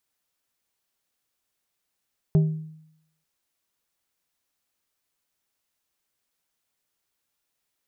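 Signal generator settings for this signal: glass hit plate, lowest mode 157 Hz, decay 0.77 s, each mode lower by 11 dB, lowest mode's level -13 dB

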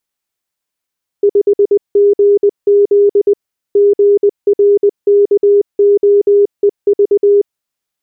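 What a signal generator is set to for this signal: Morse "5GZ GRKOEV" 20 wpm 406 Hz -5 dBFS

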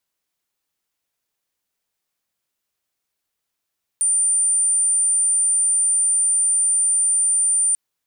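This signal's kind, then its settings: tone sine 9.09 kHz -15 dBFS 3.74 s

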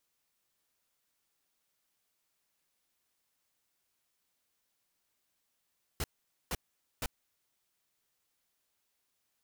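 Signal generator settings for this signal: noise bursts pink, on 0.04 s, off 0.47 s, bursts 3, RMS -34 dBFS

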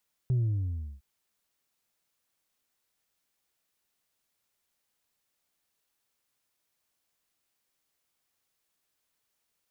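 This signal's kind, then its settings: sub drop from 130 Hz, over 0.71 s, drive 2 dB, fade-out 0.69 s, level -23 dB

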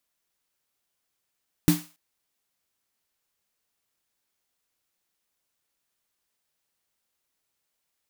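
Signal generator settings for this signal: snare drum length 0.28 s, tones 170 Hz, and 300 Hz, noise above 560 Hz, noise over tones -10.5 dB, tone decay 0.24 s, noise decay 0.38 s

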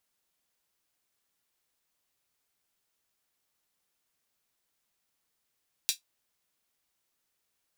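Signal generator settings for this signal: closed hi-hat, high-pass 3.6 kHz, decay 0.13 s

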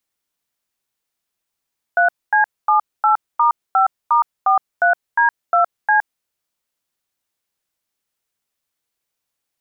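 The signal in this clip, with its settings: DTMF "3C78*5*43D2C", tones 116 ms, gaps 240 ms, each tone -13.5 dBFS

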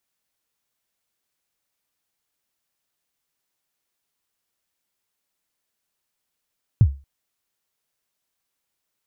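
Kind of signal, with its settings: kick drum length 0.23 s, from 130 Hz, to 69 Hz, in 61 ms, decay 0.30 s, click off, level -6 dB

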